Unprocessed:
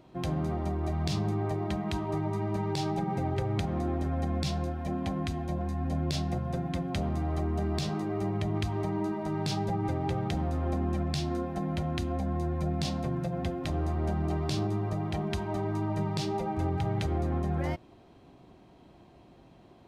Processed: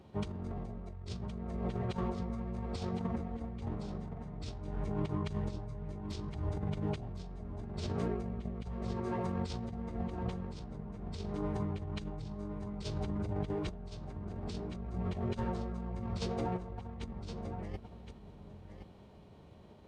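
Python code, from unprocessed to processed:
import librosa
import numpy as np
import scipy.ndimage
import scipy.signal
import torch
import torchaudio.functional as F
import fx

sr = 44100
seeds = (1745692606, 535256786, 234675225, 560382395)

p1 = fx.pitch_keep_formants(x, sr, semitones=-9.5)
p2 = fx.low_shelf(p1, sr, hz=150.0, db=7.0)
p3 = fx.over_compress(p2, sr, threshold_db=-31.0, ratio=-0.5)
p4 = scipy.signal.sosfilt(scipy.signal.butter(2, 42.0, 'highpass', fs=sr, output='sos'), p3)
p5 = p4 + fx.echo_single(p4, sr, ms=1067, db=-9.0, dry=0)
y = p5 * librosa.db_to_amplitude(-6.0)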